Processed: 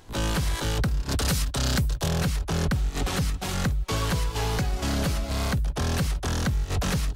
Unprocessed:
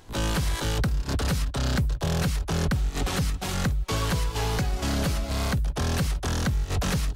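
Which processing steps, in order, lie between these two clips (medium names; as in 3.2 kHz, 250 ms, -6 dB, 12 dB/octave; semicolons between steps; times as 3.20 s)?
1.11–2.08 s: treble shelf 3.6 kHz +8.5 dB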